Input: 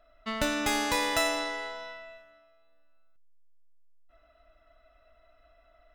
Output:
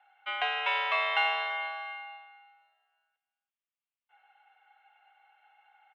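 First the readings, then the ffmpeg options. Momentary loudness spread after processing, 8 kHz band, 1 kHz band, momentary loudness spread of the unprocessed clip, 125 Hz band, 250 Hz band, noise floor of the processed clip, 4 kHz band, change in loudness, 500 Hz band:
14 LU, under -30 dB, +1.5 dB, 15 LU, under -40 dB, under -35 dB, under -85 dBFS, -1.0 dB, -0.5 dB, -7.0 dB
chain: -af "highpass=f=460:t=q:w=0.5412,highpass=f=460:t=q:w=1.307,lowpass=f=3.1k:t=q:w=0.5176,lowpass=f=3.1k:t=q:w=0.7071,lowpass=f=3.1k:t=q:w=1.932,afreqshift=150,aecho=1:1:335:0.158,aexciter=amount=1.3:drive=6.8:freq=2.4k"

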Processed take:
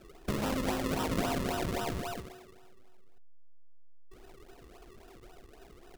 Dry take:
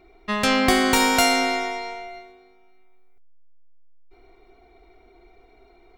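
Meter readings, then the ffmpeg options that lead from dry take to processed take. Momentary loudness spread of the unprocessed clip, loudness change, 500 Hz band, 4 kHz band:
17 LU, -13.5 dB, -10.0 dB, -17.0 dB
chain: -af "acompressor=threshold=-29dB:ratio=8,acrusher=samples=39:mix=1:aa=0.000001:lfo=1:lforange=39:lforate=3.7"

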